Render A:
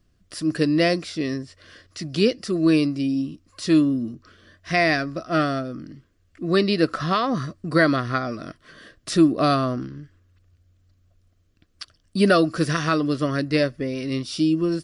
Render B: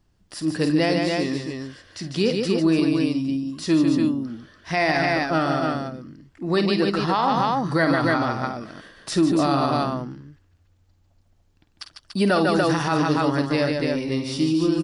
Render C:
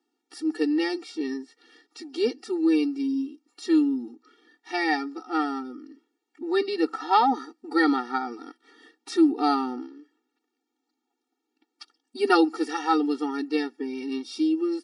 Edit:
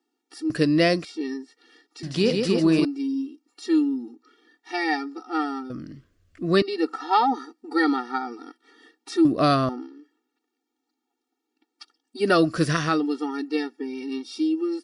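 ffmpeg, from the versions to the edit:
-filter_complex "[0:a]asplit=4[s0][s1][s2][s3];[2:a]asplit=6[s4][s5][s6][s7][s8][s9];[s4]atrim=end=0.502[s10];[s0]atrim=start=0.498:end=1.052[s11];[s5]atrim=start=1.048:end=2.032[s12];[1:a]atrim=start=2.028:end=2.852[s13];[s6]atrim=start=2.848:end=5.702[s14];[s1]atrim=start=5.698:end=6.622[s15];[s7]atrim=start=6.618:end=9.252[s16];[s2]atrim=start=9.248:end=9.692[s17];[s8]atrim=start=9.688:end=12.43[s18];[s3]atrim=start=12.19:end=13.05[s19];[s9]atrim=start=12.81[s20];[s10][s11]acrossfade=d=0.004:c1=hsin:c2=hsin[s21];[s21][s12]acrossfade=d=0.004:c1=hsin:c2=hsin[s22];[s22][s13]acrossfade=d=0.004:c1=hsin:c2=hsin[s23];[s23][s14]acrossfade=d=0.004:c1=hsin:c2=hsin[s24];[s24][s15]acrossfade=d=0.004:c1=hsin:c2=hsin[s25];[s25][s16]acrossfade=d=0.004:c1=hsin:c2=hsin[s26];[s26][s17]acrossfade=d=0.004:c1=hsin:c2=hsin[s27];[s27][s18]acrossfade=d=0.004:c1=hsin:c2=hsin[s28];[s28][s19]acrossfade=d=0.24:c1=tri:c2=tri[s29];[s29][s20]acrossfade=d=0.24:c1=tri:c2=tri"

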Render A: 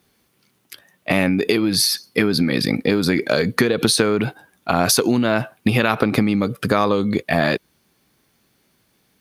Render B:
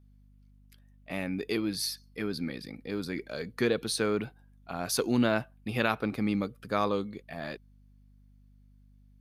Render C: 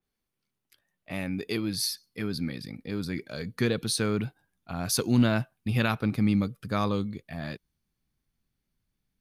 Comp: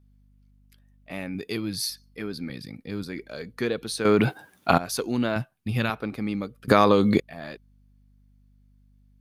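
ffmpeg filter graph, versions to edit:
-filter_complex "[2:a]asplit=3[s0][s1][s2];[0:a]asplit=2[s3][s4];[1:a]asplit=6[s5][s6][s7][s8][s9][s10];[s5]atrim=end=1.352[s11];[s0]atrim=start=1.348:end=1.902[s12];[s6]atrim=start=1.898:end=2.502[s13];[s1]atrim=start=2.498:end=3.032[s14];[s7]atrim=start=3.028:end=4.052[s15];[s3]atrim=start=4.048:end=4.782[s16];[s8]atrim=start=4.778:end=5.362[s17];[s2]atrim=start=5.358:end=5.902[s18];[s9]atrim=start=5.898:end=6.682[s19];[s4]atrim=start=6.678:end=7.202[s20];[s10]atrim=start=7.198[s21];[s11][s12]acrossfade=d=0.004:c1=hsin:c2=hsin[s22];[s22][s13]acrossfade=d=0.004:c1=hsin:c2=hsin[s23];[s23][s14]acrossfade=d=0.004:c1=hsin:c2=hsin[s24];[s24][s15]acrossfade=d=0.004:c1=hsin:c2=hsin[s25];[s25][s16]acrossfade=d=0.004:c1=hsin:c2=hsin[s26];[s26][s17]acrossfade=d=0.004:c1=hsin:c2=hsin[s27];[s27][s18]acrossfade=d=0.004:c1=hsin:c2=hsin[s28];[s28][s19]acrossfade=d=0.004:c1=hsin:c2=hsin[s29];[s29][s20]acrossfade=d=0.004:c1=hsin:c2=hsin[s30];[s30][s21]acrossfade=d=0.004:c1=hsin:c2=hsin"

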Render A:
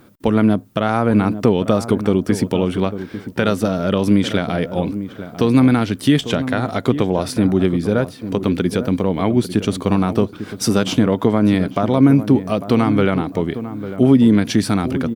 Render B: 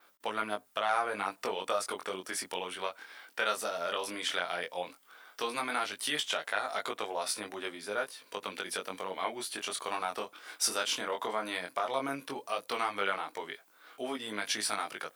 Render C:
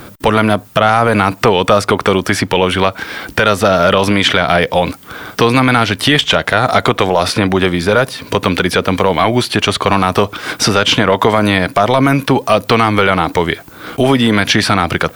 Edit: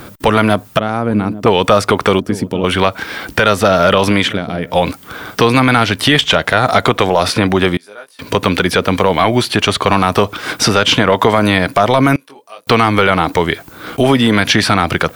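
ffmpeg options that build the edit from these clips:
-filter_complex "[0:a]asplit=3[s0][s1][s2];[1:a]asplit=2[s3][s4];[2:a]asplit=6[s5][s6][s7][s8][s9][s10];[s5]atrim=end=0.792[s11];[s0]atrim=start=0.788:end=1.462[s12];[s6]atrim=start=1.458:end=2.202[s13];[s1]atrim=start=2.198:end=2.642[s14];[s7]atrim=start=2.638:end=4.36[s15];[s2]atrim=start=4.2:end=4.77[s16];[s8]atrim=start=4.61:end=7.772[s17];[s3]atrim=start=7.768:end=8.192[s18];[s9]atrim=start=8.188:end=12.162[s19];[s4]atrim=start=12.158:end=12.672[s20];[s10]atrim=start=12.668[s21];[s11][s12]acrossfade=d=0.004:c1=hsin:c2=hsin[s22];[s22][s13]acrossfade=d=0.004:c1=hsin:c2=hsin[s23];[s23][s14]acrossfade=d=0.004:c1=hsin:c2=hsin[s24];[s24][s15]acrossfade=d=0.004:c1=hsin:c2=hsin[s25];[s25][s16]acrossfade=d=0.16:c1=tri:c2=tri[s26];[s26][s17]acrossfade=d=0.16:c1=tri:c2=tri[s27];[s27][s18]acrossfade=d=0.004:c1=hsin:c2=hsin[s28];[s28][s19]acrossfade=d=0.004:c1=hsin:c2=hsin[s29];[s29][s20]acrossfade=d=0.004:c1=hsin:c2=hsin[s30];[s30][s21]acrossfade=d=0.004:c1=hsin:c2=hsin"

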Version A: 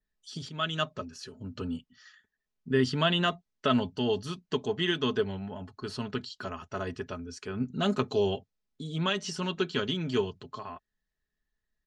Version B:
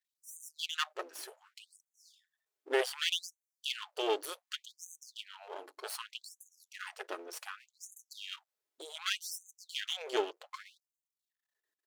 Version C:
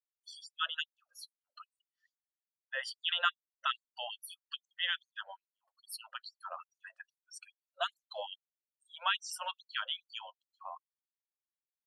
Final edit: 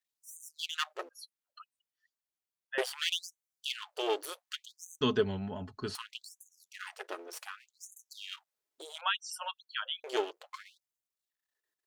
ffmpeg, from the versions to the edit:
-filter_complex "[2:a]asplit=2[s0][s1];[1:a]asplit=4[s2][s3][s4][s5];[s2]atrim=end=1.092[s6];[s0]atrim=start=1.088:end=2.782[s7];[s3]atrim=start=2.778:end=5.012[s8];[0:a]atrim=start=5.008:end=5.952[s9];[s4]atrim=start=5.948:end=9.012[s10];[s1]atrim=start=9.008:end=10.042[s11];[s5]atrim=start=10.038[s12];[s6][s7]acrossfade=d=0.004:c1=hsin:c2=hsin[s13];[s13][s8]acrossfade=d=0.004:c1=hsin:c2=hsin[s14];[s14][s9]acrossfade=d=0.004:c1=hsin:c2=hsin[s15];[s15][s10]acrossfade=d=0.004:c1=hsin:c2=hsin[s16];[s16][s11]acrossfade=d=0.004:c1=hsin:c2=hsin[s17];[s17][s12]acrossfade=d=0.004:c1=hsin:c2=hsin"

